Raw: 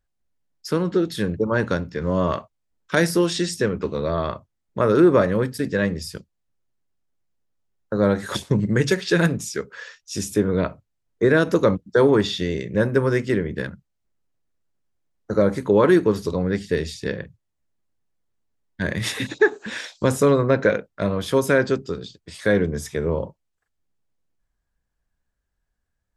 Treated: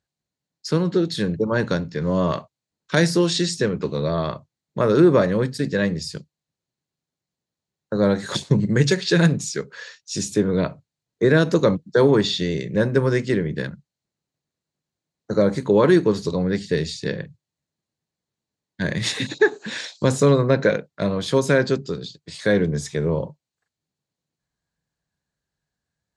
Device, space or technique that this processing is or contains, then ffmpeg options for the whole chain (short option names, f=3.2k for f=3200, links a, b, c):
car door speaker: -af "highpass=100,equalizer=f=150:t=q:w=4:g=8,equalizer=f=1.3k:t=q:w=4:g=-3,equalizer=f=4.2k:t=q:w=4:g=8,equalizer=f=6.8k:t=q:w=4:g=4,lowpass=f=9.3k:w=0.5412,lowpass=f=9.3k:w=1.3066"